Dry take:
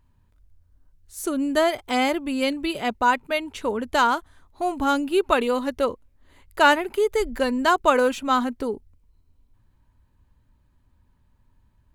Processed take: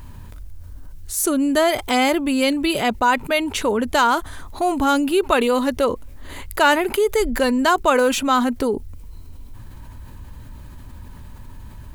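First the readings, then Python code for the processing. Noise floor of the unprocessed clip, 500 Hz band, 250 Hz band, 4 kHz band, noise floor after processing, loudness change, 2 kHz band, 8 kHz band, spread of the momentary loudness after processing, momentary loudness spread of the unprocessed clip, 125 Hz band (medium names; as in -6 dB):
-64 dBFS, +3.5 dB, +5.5 dB, +5.0 dB, -39 dBFS, +3.5 dB, +3.0 dB, +10.0 dB, 7 LU, 10 LU, no reading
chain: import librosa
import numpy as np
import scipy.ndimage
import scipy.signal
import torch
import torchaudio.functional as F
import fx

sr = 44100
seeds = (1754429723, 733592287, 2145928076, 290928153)

y = fx.high_shelf(x, sr, hz=6700.0, db=6.0)
y = fx.env_flatten(y, sr, amount_pct=50)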